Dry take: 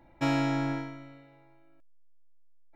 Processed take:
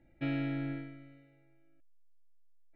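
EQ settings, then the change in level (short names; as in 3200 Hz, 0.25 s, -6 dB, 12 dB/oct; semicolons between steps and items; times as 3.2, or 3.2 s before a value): synth low-pass 5700 Hz, resonance Q 2.5; air absorption 300 m; fixed phaser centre 2400 Hz, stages 4; -4.5 dB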